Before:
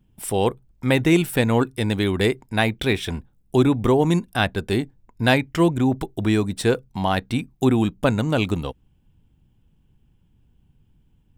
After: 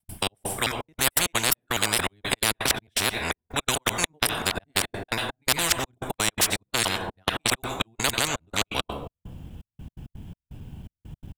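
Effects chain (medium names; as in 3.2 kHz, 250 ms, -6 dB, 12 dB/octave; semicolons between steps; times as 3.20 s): time reversed locally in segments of 221 ms; peaking EQ 82 Hz +10 dB 1.3 oct; on a send: delay 90 ms -24 dB; on the sum: plate-style reverb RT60 0.83 s, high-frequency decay 0.5×, pre-delay 85 ms, DRR 19.5 dB; trance gate ".xx..xxxx..x.x" 167 bpm -60 dB; peaking EQ 670 Hz +7 dB 0.39 oct; spectrum-flattening compressor 10:1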